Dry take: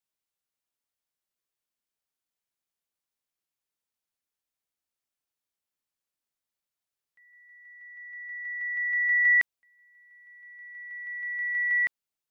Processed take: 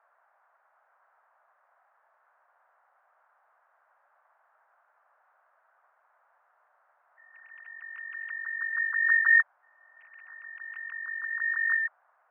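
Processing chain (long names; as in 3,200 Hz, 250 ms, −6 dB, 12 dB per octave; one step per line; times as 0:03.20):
three sine waves on the formant tracks
frequency shifter −130 Hz
noise in a band 610–1,600 Hz −68 dBFS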